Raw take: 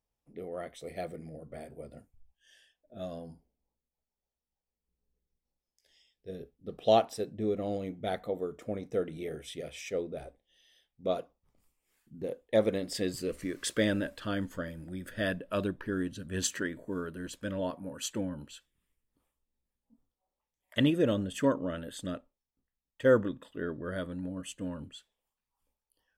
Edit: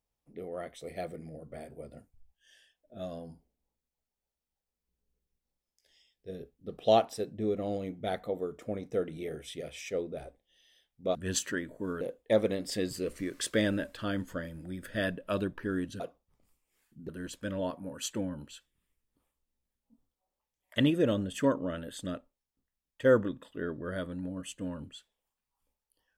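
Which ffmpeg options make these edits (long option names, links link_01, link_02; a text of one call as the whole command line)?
ffmpeg -i in.wav -filter_complex "[0:a]asplit=5[link_01][link_02][link_03][link_04][link_05];[link_01]atrim=end=11.152[link_06];[link_02]atrim=start=16.228:end=17.092[link_07];[link_03]atrim=start=12.238:end=16.232[link_08];[link_04]atrim=start=11.148:end=12.242[link_09];[link_05]atrim=start=17.088[link_10];[link_06][link_07]acrossfade=duration=0.004:curve1=hsin:curve2=hsin[link_11];[link_11][link_08]acrossfade=duration=0.004:curve1=hsin:curve2=hsin[link_12];[link_12][link_09]acrossfade=duration=0.004:curve1=hsin:curve2=hsin[link_13];[link_13][link_10]acrossfade=duration=0.004:curve1=hsin:curve2=hsin" out.wav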